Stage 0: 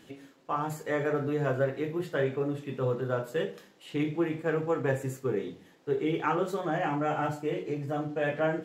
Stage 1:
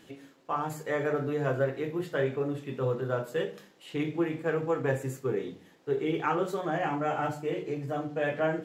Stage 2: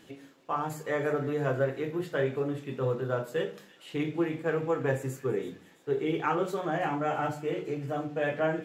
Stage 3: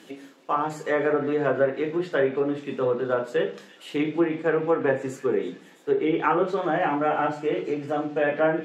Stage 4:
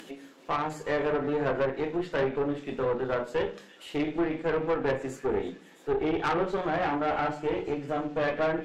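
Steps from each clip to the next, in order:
mains-hum notches 50/100/150/200/250/300 Hz
delay with a high-pass on its return 331 ms, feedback 49%, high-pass 2,200 Hz, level −15.5 dB
high-pass filter 180 Hz 24 dB per octave; treble cut that deepens with the level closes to 2,500 Hz, closed at −24.5 dBFS; level +6.5 dB
upward compression, threshold −39 dBFS; tube saturation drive 21 dB, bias 0.65

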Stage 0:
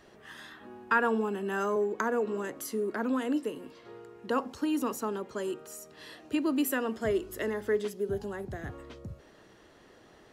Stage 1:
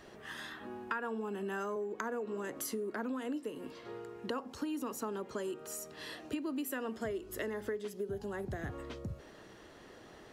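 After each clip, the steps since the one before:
downward compressor 6 to 1, threshold −38 dBFS, peak gain reduction 16.5 dB
level +2.5 dB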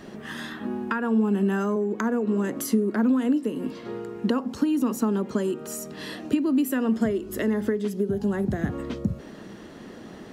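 parametric band 210 Hz +13 dB 1.1 octaves
level +7.5 dB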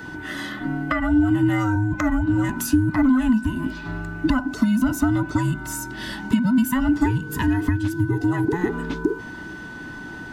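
frequency inversion band by band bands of 500 Hz
steady tone 1,500 Hz −40 dBFS
level +4 dB

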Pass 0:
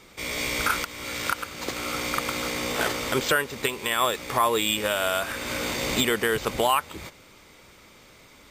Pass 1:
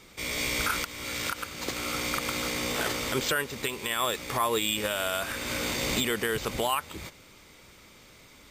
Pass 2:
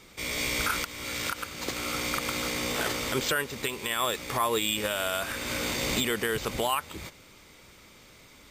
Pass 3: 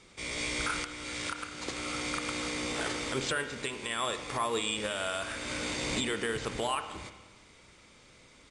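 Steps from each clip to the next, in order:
parametric band 790 Hz −3.5 dB 2.9 octaves; brickwall limiter −16.5 dBFS, peak gain reduction 5 dB
no processing that can be heard
spring reverb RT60 1.2 s, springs 30/52 ms, chirp 75 ms, DRR 8.5 dB; downsampling to 22,050 Hz; level −4.5 dB

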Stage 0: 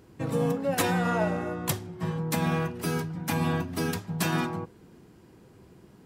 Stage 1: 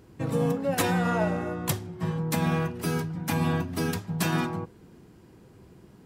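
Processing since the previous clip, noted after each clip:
low-shelf EQ 150 Hz +3.5 dB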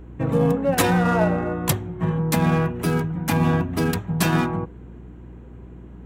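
adaptive Wiener filter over 9 samples
mains hum 60 Hz, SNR 19 dB
level +6.5 dB

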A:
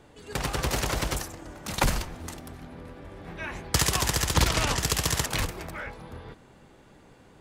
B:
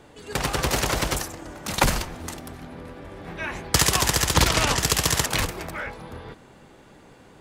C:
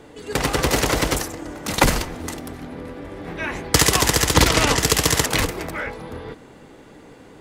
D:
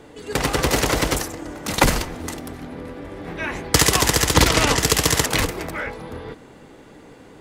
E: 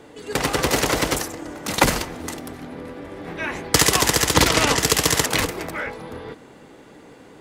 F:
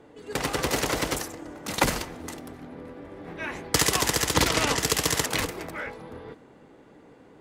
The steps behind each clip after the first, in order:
low-shelf EQ 130 Hz −4.5 dB; level +5 dB
hollow resonant body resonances 290/450/2,000 Hz, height 6 dB, ringing for 35 ms; level +3 dB
no processing that can be heard
low-shelf EQ 79 Hz −10 dB
one half of a high-frequency compander decoder only; level −6 dB

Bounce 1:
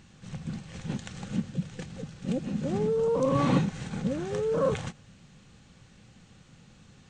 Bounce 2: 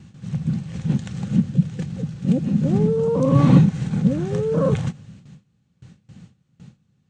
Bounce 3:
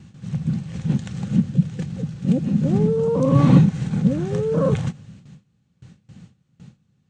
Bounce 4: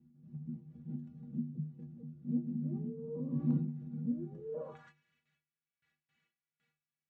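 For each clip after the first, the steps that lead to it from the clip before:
high-pass filter 55 Hz 12 dB per octave; noise gate with hold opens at −44 dBFS; parametric band 140 Hz +13 dB 2.1 octaves; level +1.5 dB
no processing that can be heard
stiff-string resonator 71 Hz, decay 0.44 s, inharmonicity 0.03; band-pass filter sweep 250 Hz → 2,000 Hz, 0:04.34–0:04.93; hard clipping −18 dBFS, distortion −40 dB; level −4 dB

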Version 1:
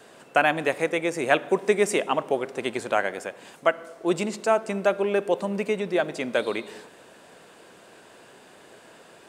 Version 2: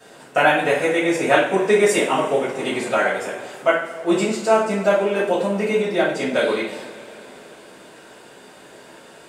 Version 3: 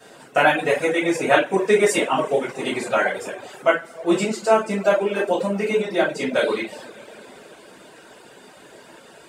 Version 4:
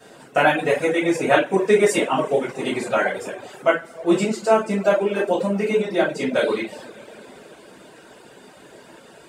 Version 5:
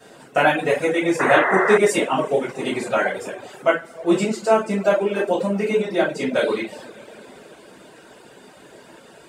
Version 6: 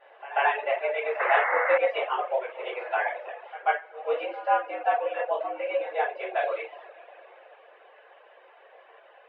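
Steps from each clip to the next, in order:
coupled-rooms reverb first 0.45 s, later 3.8 s, from −21 dB, DRR −10 dB; level −4.5 dB
reverb reduction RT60 0.65 s
low-shelf EQ 440 Hz +4.5 dB; level −1.5 dB
sound drawn into the spectrogram noise, 0:01.19–0:01.78, 370–2,100 Hz −20 dBFS
single-sideband voice off tune +120 Hz 350–2,800 Hz; echo ahead of the sound 139 ms −17.5 dB; level −6.5 dB

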